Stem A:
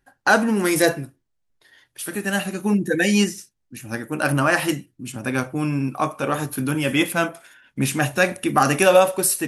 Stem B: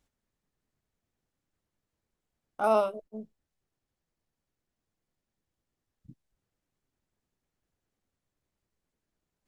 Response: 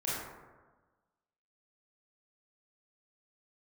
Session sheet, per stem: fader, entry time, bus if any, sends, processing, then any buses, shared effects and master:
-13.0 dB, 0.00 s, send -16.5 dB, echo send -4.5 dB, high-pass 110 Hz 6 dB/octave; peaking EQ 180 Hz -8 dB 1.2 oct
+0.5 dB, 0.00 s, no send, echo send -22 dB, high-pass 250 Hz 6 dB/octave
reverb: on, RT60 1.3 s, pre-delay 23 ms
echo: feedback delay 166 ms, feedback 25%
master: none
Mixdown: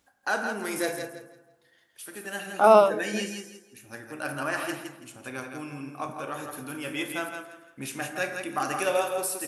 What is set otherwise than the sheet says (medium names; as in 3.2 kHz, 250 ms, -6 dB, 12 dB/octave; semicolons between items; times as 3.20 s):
stem A: send -16.5 dB -> -10.5 dB; stem B +0.5 dB -> +9.0 dB